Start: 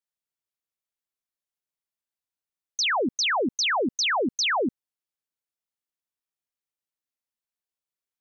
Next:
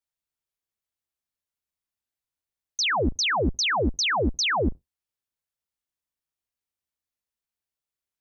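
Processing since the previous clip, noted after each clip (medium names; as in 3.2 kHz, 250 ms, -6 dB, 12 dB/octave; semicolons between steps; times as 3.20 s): octave divider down 2 oct, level +3 dB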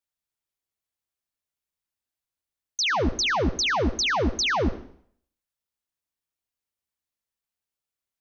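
reverberation RT60 0.60 s, pre-delay 63 ms, DRR 14.5 dB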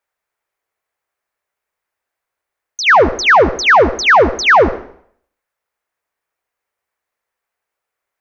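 high-order bell 950 Hz +13 dB 2.9 oct; trim +4 dB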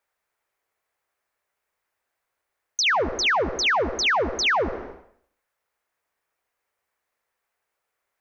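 compression 10:1, threshold -20 dBFS, peak gain reduction 14 dB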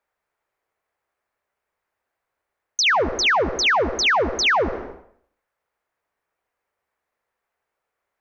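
tape noise reduction on one side only decoder only; trim +3 dB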